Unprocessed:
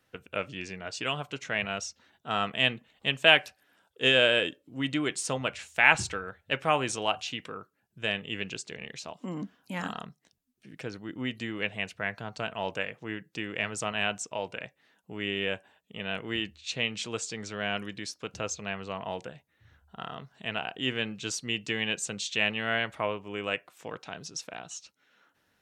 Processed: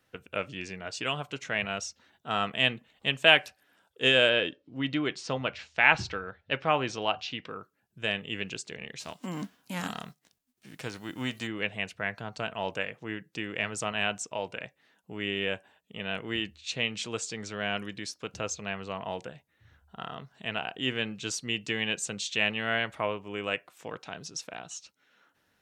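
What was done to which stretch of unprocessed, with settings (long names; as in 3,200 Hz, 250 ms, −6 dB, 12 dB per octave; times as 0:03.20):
0:04.29–0:07.50: Chebyshev low-pass filter 5,000 Hz, order 3
0:08.99–0:11.46: spectral envelope flattened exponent 0.6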